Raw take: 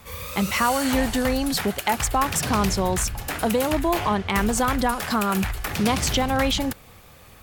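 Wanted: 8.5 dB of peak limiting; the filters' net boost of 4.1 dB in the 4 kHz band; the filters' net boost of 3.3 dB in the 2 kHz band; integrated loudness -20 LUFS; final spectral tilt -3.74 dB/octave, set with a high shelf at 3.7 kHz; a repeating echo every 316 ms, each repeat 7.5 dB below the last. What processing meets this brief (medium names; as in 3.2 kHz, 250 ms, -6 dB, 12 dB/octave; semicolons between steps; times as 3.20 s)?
peaking EQ 2 kHz +3.5 dB; treble shelf 3.7 kHz -4.5 dB; peaking EQ 4 kHz +7 dB; peak limiter -14.5 dBFS; feedback delay 316 ms, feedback 42%, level -7.5 dB; trim +4 dB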